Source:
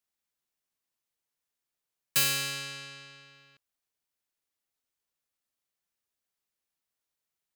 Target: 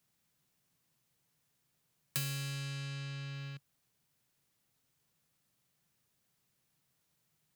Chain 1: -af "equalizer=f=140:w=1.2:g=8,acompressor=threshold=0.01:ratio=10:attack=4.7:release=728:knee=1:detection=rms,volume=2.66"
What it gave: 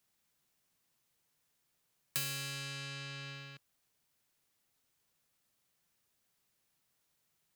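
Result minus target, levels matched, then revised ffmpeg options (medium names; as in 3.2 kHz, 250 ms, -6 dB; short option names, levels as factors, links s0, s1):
125 Hz band -7.5 dB
-af "equalizer=f=140:w=1.2:g=18,acompressor=threshold=0.01:ratio=10:attack=4.7:release=728:knee=1:detection=rms,volume=2.66"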